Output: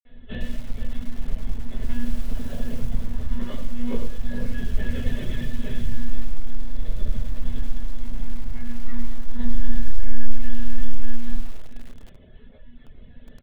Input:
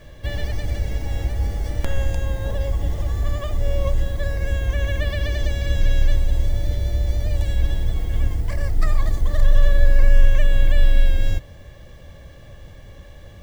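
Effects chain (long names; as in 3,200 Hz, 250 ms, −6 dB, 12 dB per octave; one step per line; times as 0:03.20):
one-pitch LPC vocoder at 8 kHz 240 Hz
high-shelf EQ 3,100 Hz +10 dB
mains-hum notches 50/100/150/200/250/300/350/400 Hz
multi-tap delay 63/79/479/666 ms −12.5/−7.5/−12/−17.5 dB
convolution reverb RT60 0.30 s, pre-delay 46 ms
reverb reduction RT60 0.9 s
0:01.82–0:02.86: background noise pink −56 dBFS
feedback echo at a low word length 105 ms, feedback 35%, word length 7 bits, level −9.5 dB
level +4.5 dB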